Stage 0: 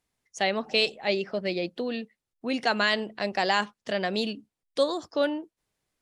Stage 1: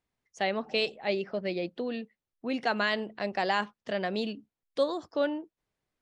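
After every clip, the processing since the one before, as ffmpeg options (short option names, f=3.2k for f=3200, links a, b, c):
-af "lowpass=f=2.8k:p=1,volume=-2.5dB"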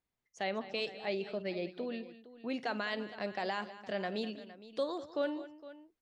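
-af "alimiter=limit=-18.5dB:level=0:latency=1,aecho=1:1:51|202|462:0.112|0.178|0.15,volume=-5.5dB"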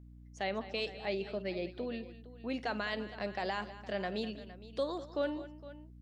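-af "aeval=exprs='val(0)+0.00251*(sin(2*PI*60*n/s)+sin(2*PI*2*60*n/s)/2+sin(2*PI*3*60*n/s)/3+sin(2*PI*4*60*n/s)/4+sin(2*PI*5*60*n/s)/5)':c=same"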